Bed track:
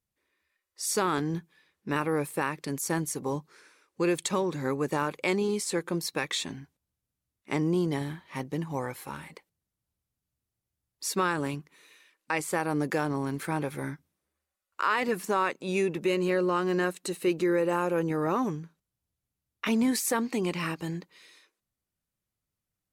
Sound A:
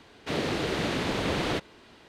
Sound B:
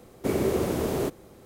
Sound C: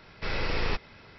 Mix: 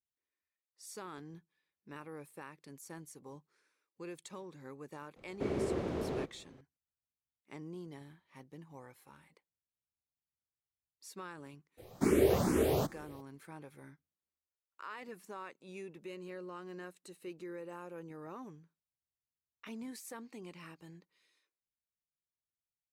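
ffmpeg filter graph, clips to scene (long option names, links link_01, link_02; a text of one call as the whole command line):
ffmpeg -i bed.wav -i cue0.wav -i cue1.wav -filter_complex "[2:a]asplit=2[link_01][link_02];[0:a]volume=-19.5dB[link_03];[link_01]lowpass=3900[link_04];[link_02]asplit=2[link_05][link_06];[link_06]afreqshift=2.3[link_07];[link_05][link_07]amix=inputs=2:normalize=1[link_08];[link_04]atrim=end=1.45,asetpts=PTS-STARTPTS,volume=-9.5dB,afade=type=in:duration=0.004:curve=hsin,afade=type=out:start_time=1.446:duration=0.004:curve=hsin,adelay=5160[link_09];[link_08]atrim=end=1.45,asetpts=PTS-STARTPTS,afade=type=in:duration=0.02,afade=type=out:start_time=1.43:duration=0.02,adelay=11770[link_10];[link_03][link_09][link_10]amix=inputs=3:normalize=0" out.wav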